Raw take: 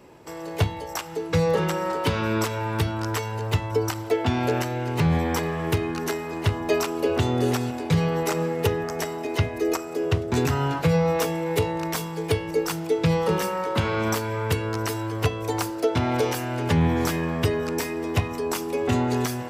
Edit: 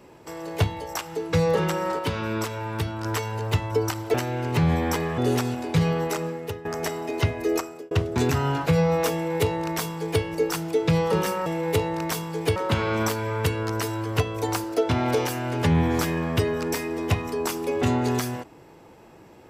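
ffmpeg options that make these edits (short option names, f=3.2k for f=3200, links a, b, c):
-filter_complex "[0:a]asplit=9[a][b][c][d][e][f][g][h][i];[a]atrim=end=1.992[j];[b]atrim=start=1.988:end=3.052,asetpts=PTS-STARTPTS,volume=-3.5dB[k];[c]atrim=start=3.048:end=4.142[l];[d]atrim=start=4.568:end=5.612[m];[e]atrim=start=7.338:end=8.81,asetpts=PTS-STARTPTS,afade=t=out:st=0.742:d=0.73:silence=0.158489[n];[f]atrim=start=8.81:end=10.07,asetpts=PTS-STARTPTS,afade=t=in:d=0.004:c=hsin:silence=0.158489,afade=t=out:st=0.91:d=0.35[o];[g]atrim=start=10.07:end=13.622,asetpts=PTS-STARTPTS,afade=t=in:d=0.004:c=hsin[p];[h]atrim=start=11.288:end=12.392[q];[i]atrim=start=13.618[r];[j][k]acrossfade=d=0.004:c1=hsin:c2=hsin[s];[s][l]acrossfade=d=0.004:c1=hsin:c2=hsin[t];[t][m]acrossfade=d=0.004:c1=hsin:c2=hsin[u];[n][o][p]concat=n=3:v=0:a=1[v];[u][v]acrossfade=d=0.004:c1=hsin:c2=hsin[w];[w][q]acrossfade=d=0.004:c1=hsin:c2=hsin[x];[x][r]acrossfade=d=0.004:c1=hsin:c2=hsin"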